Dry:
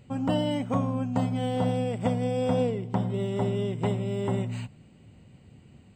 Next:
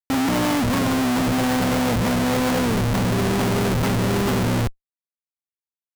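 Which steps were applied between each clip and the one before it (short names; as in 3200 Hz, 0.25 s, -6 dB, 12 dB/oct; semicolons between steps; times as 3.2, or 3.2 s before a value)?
ten-band EQ 125 Hz +4 dB, 250 Hz +11 dB, 1000 Hz +8 dB, 2000 Hz +11 dB; Schmitt trigger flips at -32 dBFS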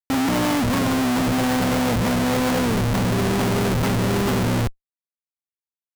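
nothing audible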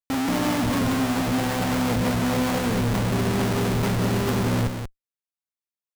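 echo 0.183 s -6 dB; gain -4 dB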